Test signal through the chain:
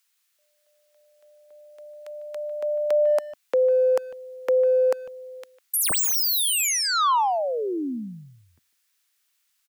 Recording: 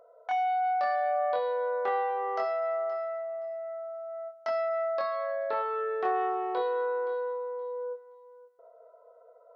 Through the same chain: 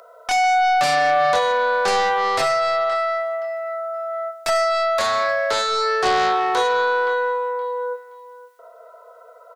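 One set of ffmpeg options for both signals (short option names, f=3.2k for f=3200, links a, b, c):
-filter_complex "[0:a]highpass=f=240:w=0.5412,highpass=f=240:w=1.3066,acrossover=split=580|1200[a][b][c];[c]aeval=exprs='0.0398*sin(PI/2*4.47*val(0)/0.0398)':c=same[d];[a][b][d]amix=inputs=3:normalize=0,asplit=2[e][f];[f]adelay=150,highpass=300,lowpass=3.4k,asoftclip=type=hard:threshold=-26dB,volume=-16dB[g];[e][g]amix=inputs=2:normalize=0,volume=7.5dB"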